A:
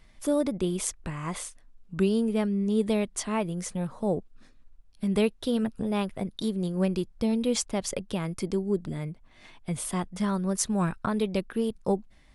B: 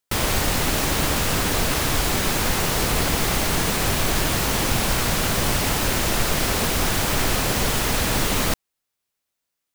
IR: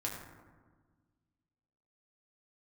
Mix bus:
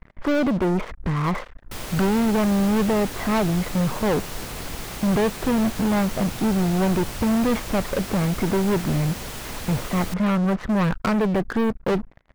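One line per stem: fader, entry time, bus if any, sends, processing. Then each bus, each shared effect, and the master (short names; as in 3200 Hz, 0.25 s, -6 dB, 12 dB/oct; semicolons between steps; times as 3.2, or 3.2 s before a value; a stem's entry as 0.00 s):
-3.0 dB, 0.00 s, no send, LPF 1900 Hz 24 dB/oct; sample leveller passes 5
-12.0 dB, 1.60 s, no send, dry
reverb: off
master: dry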